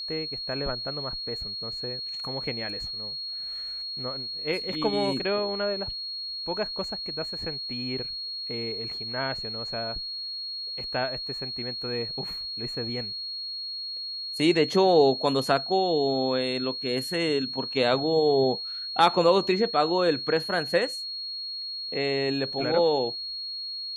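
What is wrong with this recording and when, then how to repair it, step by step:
whine 4.3 kHz -32 dBFS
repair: band-stop 4.3 kHz, Q 30

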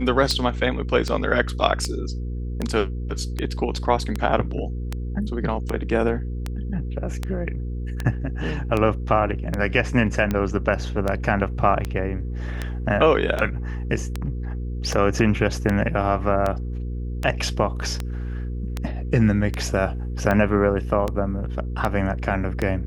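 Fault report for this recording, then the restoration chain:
hum 60 Hz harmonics 8 -28 dBFS
tick 78 rpm -11 dBFS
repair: de-click; de-hum 60 Hz, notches 8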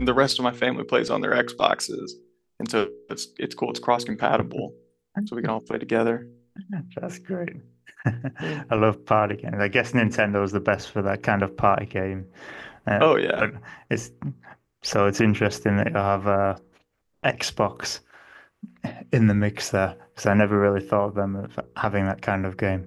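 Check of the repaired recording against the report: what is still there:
nothing left

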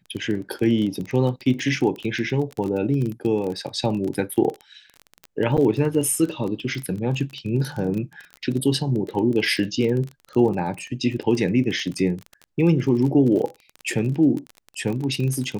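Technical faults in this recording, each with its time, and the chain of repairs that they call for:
crackle 26 per s -27 dBFS
5.57–5.58 s: dropout 7.8 ms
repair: de-click; interpolate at 5.57 s, 7.8 ms

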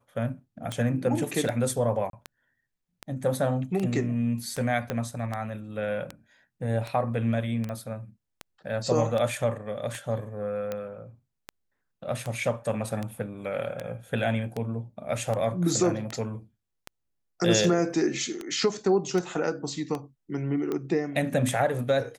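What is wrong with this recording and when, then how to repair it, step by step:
tick 78 rpm -18 dBFS
2.10–2.13 s: dropout 32 ms
4.90 s: pop -15 dBFS
7.69 s: pop -23 dBFS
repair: de-click; interpolate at 2.10 s, 32 ms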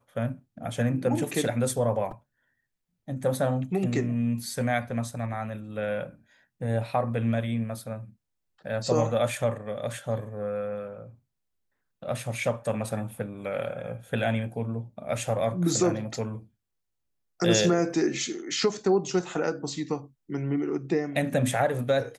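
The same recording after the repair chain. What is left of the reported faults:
4.90 s: pop

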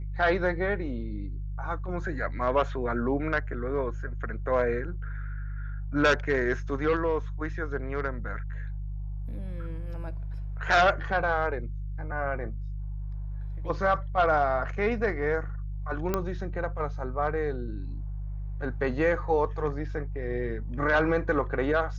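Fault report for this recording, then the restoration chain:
hum 50 Hz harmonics 3 -34 dBFS
16.14 s: pop -13 dBFS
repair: de-click; de-hum 50 Hz, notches 3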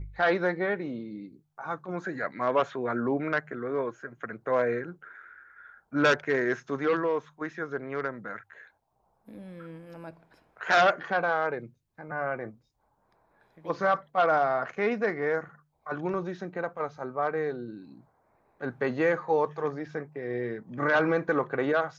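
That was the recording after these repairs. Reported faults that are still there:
nothing left

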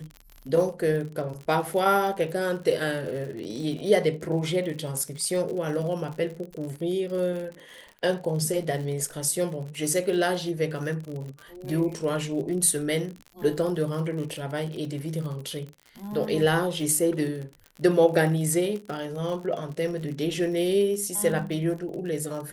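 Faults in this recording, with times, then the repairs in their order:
crackle 50 per s -33 dBFS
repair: de-click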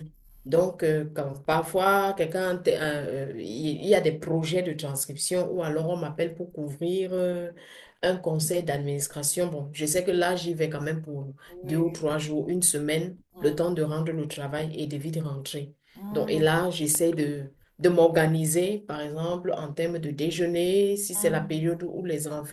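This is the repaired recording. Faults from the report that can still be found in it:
nothing left

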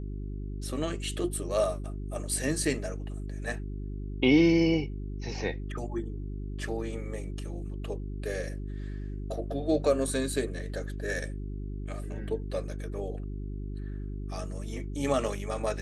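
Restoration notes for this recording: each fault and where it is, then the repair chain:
hum 50 Hz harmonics 8 -36 dBFS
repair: de-hum 50 Hz, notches 8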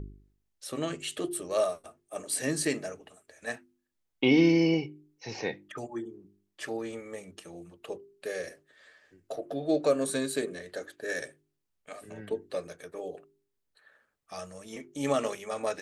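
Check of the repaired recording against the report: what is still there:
nothing left

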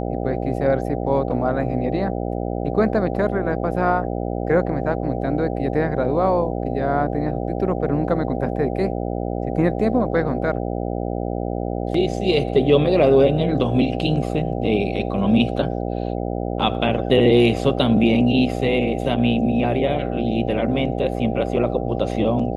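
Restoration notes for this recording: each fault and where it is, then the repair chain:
buzz 60 Hz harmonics 13 -25 dBFS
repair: de-hum 60 Hz, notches 13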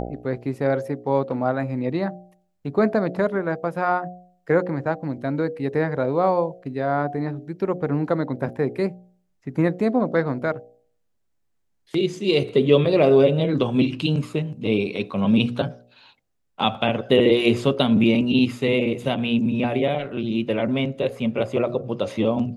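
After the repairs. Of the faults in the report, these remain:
nothing left

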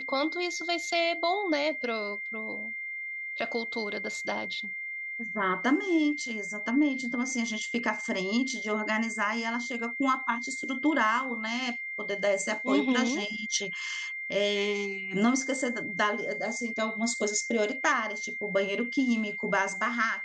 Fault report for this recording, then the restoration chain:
whine 2.1 kHz -34 dBFS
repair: band-stop 2.1 kHz, Q 30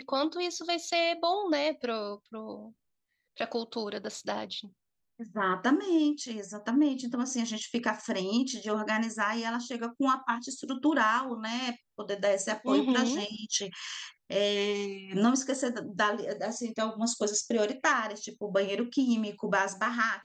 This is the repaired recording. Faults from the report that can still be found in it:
nothing left

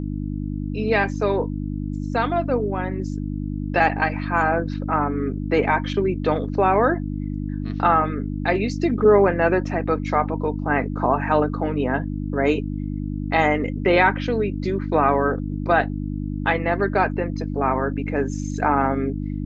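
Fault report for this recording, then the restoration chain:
hum 50 Hz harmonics 6 -27 dBFS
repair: de-hum 50 Hz, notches 6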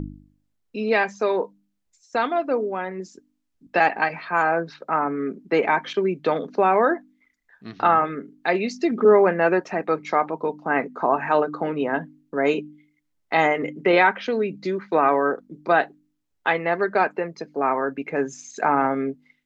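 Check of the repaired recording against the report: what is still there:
nothing left

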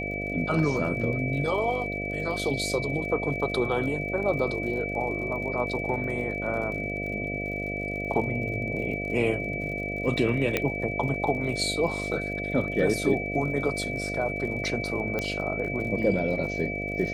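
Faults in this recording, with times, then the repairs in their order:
buzz 50 Hz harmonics 14 -34 dBFS
crackle 50 per s -37 dBFS
whine 2.3 kHz -32 dBFS
10.57 s: pop -10 dBFS
15.19 s: pop -15 dBFS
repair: de-click; de-hum 50 Hz, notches 14; band-stop 2.3 kHz, Q 30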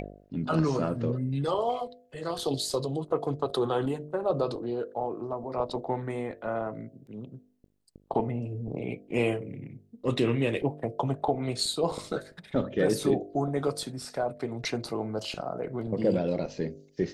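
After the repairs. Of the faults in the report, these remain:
15.19 s: pop

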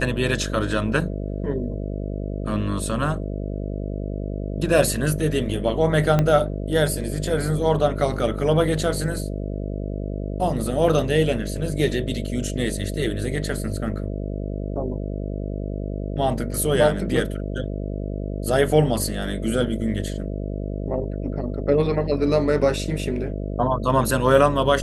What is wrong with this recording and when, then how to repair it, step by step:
buzz 50 Hz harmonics 13 -28 dBFS
6.19 s: pop -8 dBFS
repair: de-click; de-hum 50 Hz, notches 13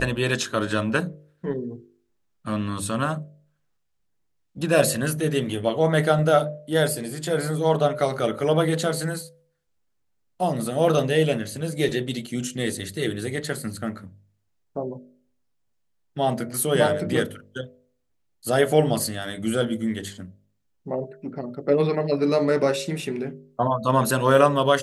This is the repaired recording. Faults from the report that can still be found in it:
6.19 s: pop

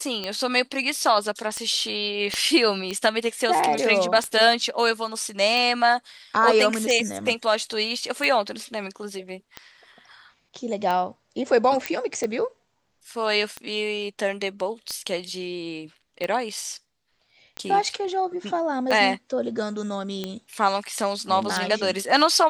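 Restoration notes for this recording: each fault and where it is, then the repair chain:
tick 45 rpm -15 dBFS
2.34 s: pop -12 dBFS
11.86 s: pop -9 dBFS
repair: de-click

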